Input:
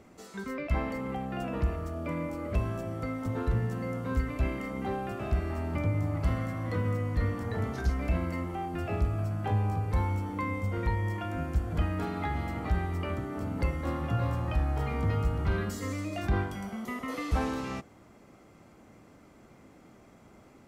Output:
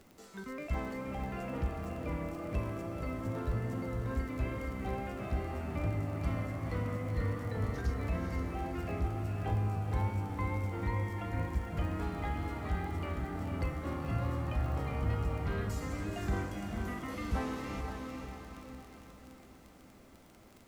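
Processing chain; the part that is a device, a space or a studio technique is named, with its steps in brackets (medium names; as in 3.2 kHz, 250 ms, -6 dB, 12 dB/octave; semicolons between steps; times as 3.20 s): vinyl LP (wow and flutter 25 cents; crackle 30 per s -37 dBFS; pink noise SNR 31 dB); echo that smears into a reverb 494 ms, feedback 49%, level -4.5 dB; trim -6 dB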